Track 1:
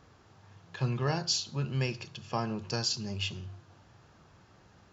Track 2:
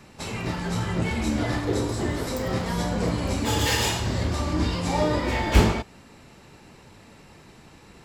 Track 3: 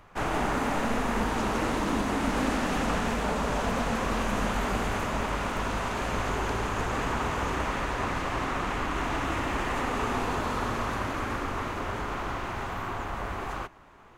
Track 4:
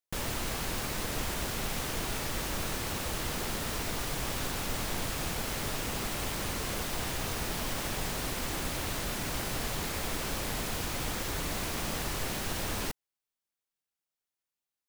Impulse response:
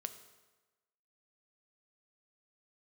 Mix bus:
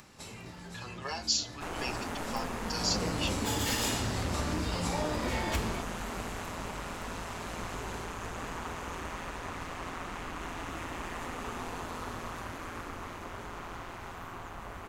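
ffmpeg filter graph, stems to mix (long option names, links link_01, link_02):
-filter_complex "[0:a]highpass=690,asplit=2[link_01][link_02];[link_02]adelay=6.9,afreqshift=-0.88[link_03];[link_01][link_03]amix=inputs=2:normalize=1,volume=0.5dB[link_04];[1:a]acompressor=threshold=-31dB:ratio=6,afade=type=in:start_time=2.7:duration=0.26:silence=0.251189[link_05];[2:a]tremolo=f=170:d=0.571,adelay=1450,volume=-7.5dB[link_06];[link_04][link_05][link_06]amix=inputs=3:normalize=0,acompressor=mode=upward:threshold=-51dB:ratio=2.5,highshelf=frequency=5200:gain=8"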